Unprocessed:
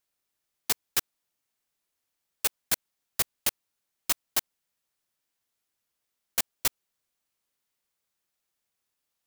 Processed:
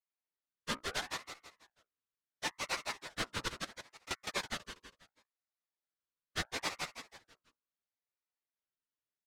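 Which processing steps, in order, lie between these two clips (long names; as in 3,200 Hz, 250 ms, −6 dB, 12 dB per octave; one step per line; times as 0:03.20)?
partials spread apart or drawn together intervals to 123%
high-pass filter 190 Hz 12 dB per octave
parametric band 1,500 Hz −13 dB 0.45 octaves
mains-hum notches 60/120/180/240/300/360/420/480/540/600 Hz
leveller curve on the samples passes 1
0:03.48–0:04.11: downward compressor, threshold −51 dBFS, peak gain reduction 18 dB
leveller curve on the samples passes 2
Bessel low-pass filter 2,900 Hz, order 2
repeating echo 163 ms, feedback 40%, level −3 dB
ring modulator whose carrier an LFO sweeps 1,200 Hz, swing 40%, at 0.73 Hz
level +4 dB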